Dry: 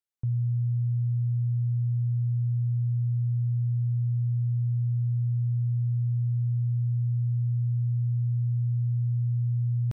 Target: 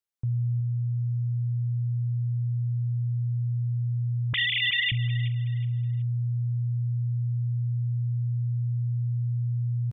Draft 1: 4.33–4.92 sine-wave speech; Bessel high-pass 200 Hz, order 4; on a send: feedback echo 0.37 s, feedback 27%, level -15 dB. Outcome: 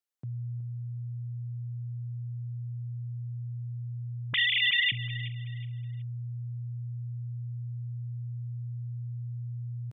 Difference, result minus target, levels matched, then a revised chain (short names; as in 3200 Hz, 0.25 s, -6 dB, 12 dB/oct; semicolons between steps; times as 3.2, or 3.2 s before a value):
250 Hz band -3.5 dB
4.33–4.92 sine-wave speech; on a send: feedback echo 0.37 s, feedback 27%, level -15 dB